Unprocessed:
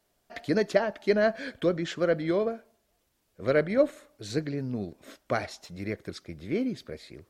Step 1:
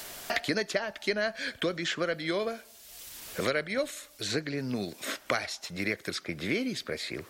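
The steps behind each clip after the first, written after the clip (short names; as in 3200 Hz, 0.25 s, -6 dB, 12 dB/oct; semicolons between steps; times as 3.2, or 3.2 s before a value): tilt shelf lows -8 dB, about 1200 Hz; three-band squash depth 100%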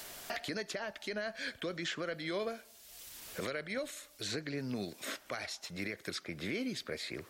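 limiter -22.5 dBFS, peak gain reduction 11.5 dB; gain -5 dB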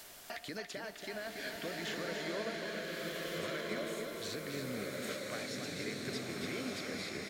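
echo 0.283 s -6.5 dB; bloom reverb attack 1.55 s, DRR -2.5 dB; gain -5 dB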